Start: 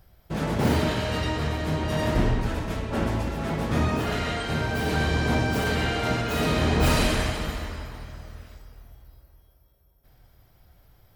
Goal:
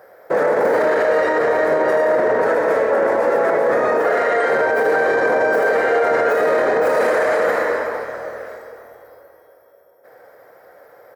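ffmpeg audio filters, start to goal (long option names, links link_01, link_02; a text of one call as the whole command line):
ffmpeg -i in.wav -filter_complex "[0:a]acrossover=split=1100[link_01][link_02];[link_02]asoftclip=type=hard:threshold=-26dB[link_03];[link_01][link_03]amix=inputs=2:normalize=0,highpass=frequency=500:width_type=q:width=5.8,highshelf=frequency=2300:width_type=q:width=3:gain=-8.5,aecho=1:1:77|154|231|308|385|462:0.266|0.144|0.0776|0.0419|0.0226|0.0122,alimiter=level_in=21dB:limit=-1dB:release=50:level=0:latency=1,volume=-8dB" out.wav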